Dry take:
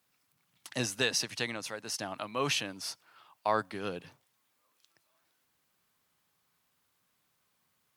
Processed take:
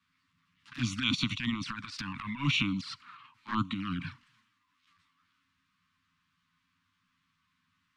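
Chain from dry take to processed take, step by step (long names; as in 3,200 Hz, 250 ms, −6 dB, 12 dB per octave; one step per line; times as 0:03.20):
transient designer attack −12 dB, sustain +9 dB
low-pass filter 3,700 Hz 12 dB per octave
formants moved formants −2 semitones
elliptic band-stop filter 270–1,100 Hz, stop band 40 dB
flanger swept by the level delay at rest 11.7 ms, full sweep at −35.5 dBFS
level +8.5 dB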